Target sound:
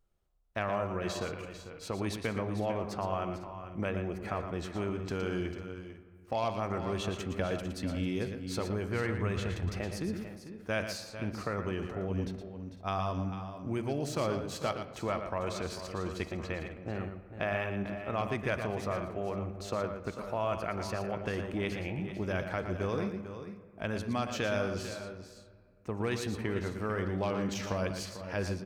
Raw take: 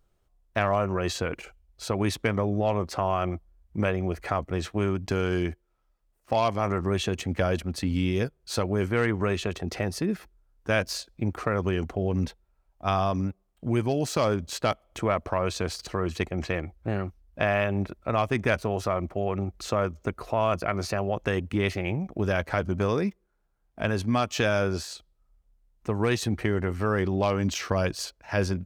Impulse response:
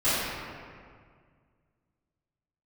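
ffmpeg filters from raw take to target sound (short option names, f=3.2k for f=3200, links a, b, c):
-filter_complex "[0:a]asplit=2[a][b];[1:a]atrim=start_sample=2205,lowpass=4.3k[c];[b][c]afir=irnorm=-1:irlink=0,volume=-26.5dB[d];[a][d]amix=inputs=2:normalize=0,asettb=1/sr,asplit=3[e][f][g];[e]atrim=end=8.554[h];[f]atrim=start=8.55:end=9.8,asetpts=PTS-STARTPTS,afade=t=in:d=0.004:c=qsin,afade=t=out:st=1.246:d=0.004:c=qsin,asubboost=boost=10:cutoff=150[i];[g]atrim=start=9.796[j];[h][i]acrossfade=d=0.004:c1=hsin:c2=qsin[k];[k][j]acrossfade=d=0.004:c1=qsin:c2=hsin,aecho=1:1:116|447|501:0.376|0.266|0.126,volume=-8.5dB"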